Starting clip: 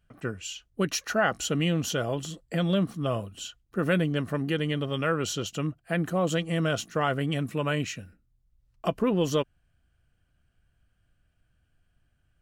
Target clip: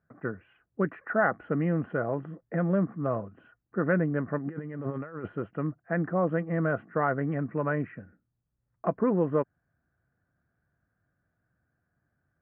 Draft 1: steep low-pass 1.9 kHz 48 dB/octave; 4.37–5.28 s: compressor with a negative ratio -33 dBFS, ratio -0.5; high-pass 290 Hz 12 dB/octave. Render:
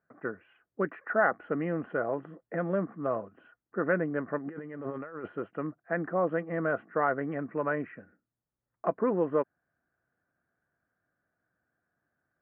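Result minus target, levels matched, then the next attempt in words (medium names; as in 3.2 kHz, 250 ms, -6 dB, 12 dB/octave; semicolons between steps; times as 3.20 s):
125 Hz band -7.0 dB
steep low-pass 1.9 kHz 48 dB/octave; 4.37–5.28 s: compressor with a negative ratio -33 dBFS, ratio -0.5; high-pass 130 Hz 12 dB/octave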